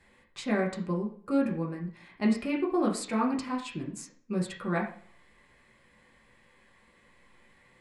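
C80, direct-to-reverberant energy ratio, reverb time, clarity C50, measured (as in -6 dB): 12.5 dB, -2.0 dB, 0.50 s, 8.0 dB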